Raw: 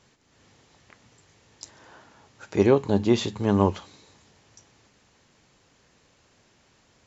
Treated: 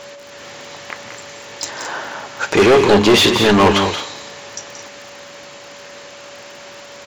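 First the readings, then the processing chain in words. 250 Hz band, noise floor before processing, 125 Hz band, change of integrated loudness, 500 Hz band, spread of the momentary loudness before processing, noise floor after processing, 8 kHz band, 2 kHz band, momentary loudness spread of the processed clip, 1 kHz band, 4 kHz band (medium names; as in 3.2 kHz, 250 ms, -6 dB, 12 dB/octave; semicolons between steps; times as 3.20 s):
+8.0 dB, -63 dBFS, +4.5 dB, +9.0 dB, +10.5 dB, 8 LU, -38 dBFS, no reading, +21.0 dB, 22 LU, +15.0 dB, +21.0 dB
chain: dynamic bell 2.6 kHz, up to +4 dB, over -45 dBFS, Q 1.2; overdrive pedal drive 31 dB, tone 4.8 kHz, clips at -4.5 dBFS; whistle 570 Hz -37 dBFS; crackle 40 per s -34 dBFS; on a send: loudspeakers at several distances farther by 61 m -9 dB, 75 m -11 dB; on the sum: trim +1.5 dB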